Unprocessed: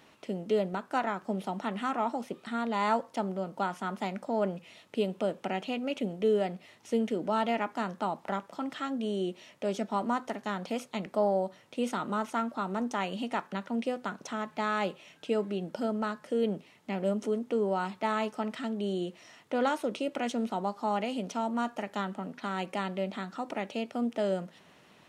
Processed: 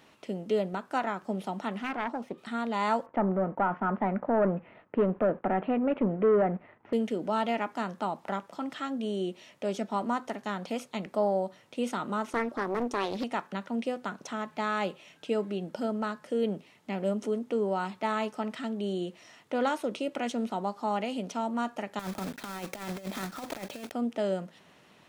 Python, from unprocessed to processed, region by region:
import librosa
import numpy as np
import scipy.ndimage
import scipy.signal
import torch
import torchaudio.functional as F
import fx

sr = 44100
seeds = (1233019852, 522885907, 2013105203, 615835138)

y = fx.chain(x, sr, fx.self_delay(depth_ms=0.32),
    fx.high_shelf(hz=3100.0, db=-11.0), at=(1.78, 2.38))
y = fx.chain(y, sr, fx.leveller(passes=2),
    fx.lowpass(hz=1800.0, slope=24), at=(3.06, 6.93))
y = fx.chain(y, sr, fx.peak_eq(hz=360.0, db=9.0, octaves=0.71),
    fx.doppler_dist(depth_ms=0.71), at=(12.27, 13.24))
y = fx.chain(y, sr, fx.block_float(bits=3),
    fx.notch(hz=2900.0, q=13.0),
    fx.over_compress(threshold_db=-36.0, ratio=-0.5), at=(21.99, 23.93))